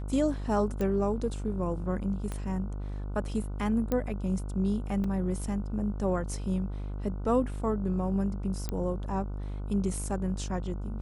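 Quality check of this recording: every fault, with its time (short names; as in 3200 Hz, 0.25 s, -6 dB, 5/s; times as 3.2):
buzz 50 Hz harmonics 30 -35 dBFS
0.81 pop -20 dBFS
2.32 pop -22 dBFS
3.92 pop -16 dBFS
5.04 gap 3.4 ms
8.69 pop -18 dBFS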